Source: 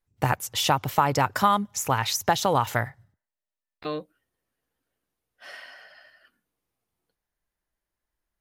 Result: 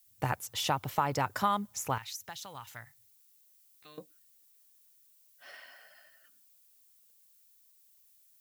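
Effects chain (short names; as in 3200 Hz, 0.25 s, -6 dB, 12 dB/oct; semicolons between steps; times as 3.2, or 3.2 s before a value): 1.98–3.98 passive tone stack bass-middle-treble 5-5-5; added noise violet -56 dBFS; gain -8 dB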